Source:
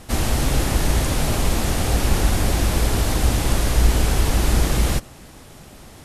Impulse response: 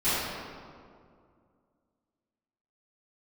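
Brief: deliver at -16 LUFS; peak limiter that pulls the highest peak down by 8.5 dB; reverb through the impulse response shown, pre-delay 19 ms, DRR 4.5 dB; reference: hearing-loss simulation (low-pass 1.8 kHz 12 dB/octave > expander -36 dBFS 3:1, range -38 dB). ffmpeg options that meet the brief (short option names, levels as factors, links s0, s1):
-filter_complex "[0:a]alimiter=limit=0.251:level=0:latency=1,asplit=2[s0][s1];[1:a]atrim=start_sample=2205,adelay=19[s2];[s1][s2]afir=irnorm=-1:irlink=0,volume=0.119[s3];[s0][s3]amix=inputs=2:normalize=0,lowpass=1800,agate=range=0.0126:threshold=0.0158:ratio=3,volume=2.11"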